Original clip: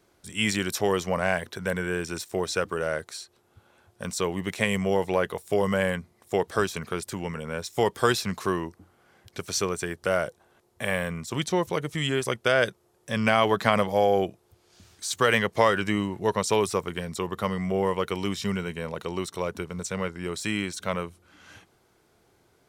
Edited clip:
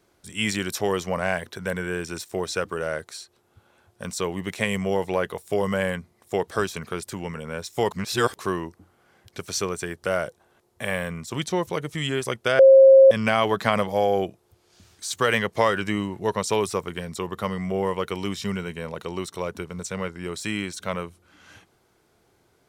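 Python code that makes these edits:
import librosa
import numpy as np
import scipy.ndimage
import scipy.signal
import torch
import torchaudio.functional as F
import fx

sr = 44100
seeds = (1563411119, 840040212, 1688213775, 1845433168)

y = fx.edit(x, sr, fx.reverse_span(start_s=7.91, length_s=0.48),
    fx.bleep(start_s=12.59, length_s=0.52, hz=536.0, db=-7.5), tone=tone)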